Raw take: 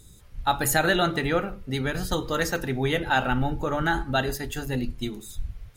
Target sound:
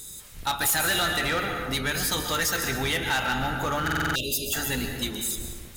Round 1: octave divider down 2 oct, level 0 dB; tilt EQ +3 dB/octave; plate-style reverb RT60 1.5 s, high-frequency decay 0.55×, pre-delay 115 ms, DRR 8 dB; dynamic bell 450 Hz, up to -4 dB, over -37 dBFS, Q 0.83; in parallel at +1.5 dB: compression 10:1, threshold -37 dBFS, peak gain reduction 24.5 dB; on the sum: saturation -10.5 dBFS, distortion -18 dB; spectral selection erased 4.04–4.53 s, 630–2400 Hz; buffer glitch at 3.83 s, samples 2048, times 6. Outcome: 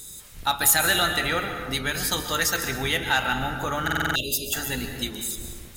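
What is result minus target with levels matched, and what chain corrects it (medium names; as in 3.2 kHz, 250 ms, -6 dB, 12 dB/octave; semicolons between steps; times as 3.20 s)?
compression: peak gain reduction +6.5 dB; saturation: distortion -9 dB
octave divider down 2 oct, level 0 dB; tilt EQ +3 dB/octave; plate-style reverb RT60 1.5 s, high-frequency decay 0.55×, pre-delay 115 ms, DRR 8 dB; dynamic bell 450 Hz, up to -4 dB, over -37 dBFS, Q 0.83; in parallel at +1.5 dB: compression 10:1, threshold -29.5 dBFS, peak gain reduction 18 dB; on the sum: saturation -20.5 dBFS, distortion -8 dB; spectral selection erased 4.04–4.53 s, 630–2400 Hz; buffer glitch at 3.83 s, samples 2048, times 6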